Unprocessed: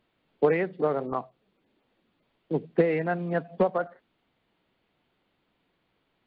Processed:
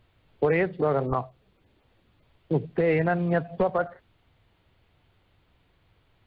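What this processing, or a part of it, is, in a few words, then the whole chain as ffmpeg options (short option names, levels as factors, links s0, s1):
car stereo with a boomy subwoofer: -af "lowshelf=f=140:t=q:w=1.5:g=12.5,alimiter=limit=0.106:level=0:latency=1:release=54,volume=1.88"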